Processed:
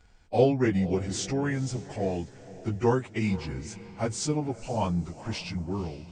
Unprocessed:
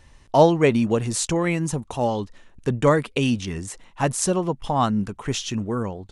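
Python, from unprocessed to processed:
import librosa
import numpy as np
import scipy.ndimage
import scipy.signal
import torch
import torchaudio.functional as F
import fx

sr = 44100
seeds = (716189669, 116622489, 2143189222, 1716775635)

y = fx.pitch_bins(x, sr, semitones=-3.5)
y = fx.echo_diffused(y, sr, ms=502, feedback_pct=40, wet_db=-16.0)
y = y * librosa.db_to_amplitude(-5.0)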